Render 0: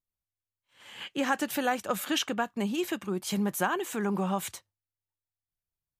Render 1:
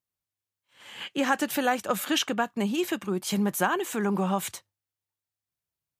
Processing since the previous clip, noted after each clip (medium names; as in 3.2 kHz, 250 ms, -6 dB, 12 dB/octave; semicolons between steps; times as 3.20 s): high-pass 85 Hz; trim +3 dB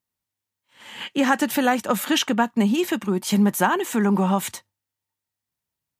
small resonant body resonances 230/910/1900 Hz, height 7 dB; trim +4 dB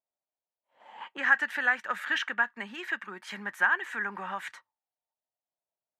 auto-wah 650–1700 Hz, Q 4.4, up, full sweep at -23 dBFS; trim +4 dB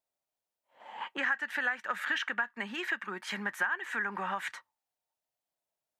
compression 4:1, threshold -33 dBFS, peak gain reduction 14 dB; trim +3.5 dB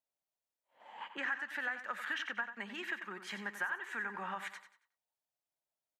feedback delay 92 ms, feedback 33%, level -10.5 dB; trim -6.5 dB